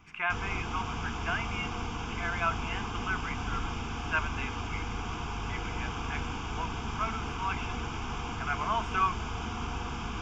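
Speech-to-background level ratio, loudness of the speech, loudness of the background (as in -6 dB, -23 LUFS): 1.0 dB, -35.5 LUFS, -36.5 LUFS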